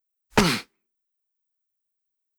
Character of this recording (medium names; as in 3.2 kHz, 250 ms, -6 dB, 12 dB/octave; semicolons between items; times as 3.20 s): noise floor -81 dBFS; spectral tilt -4.0 dB/octave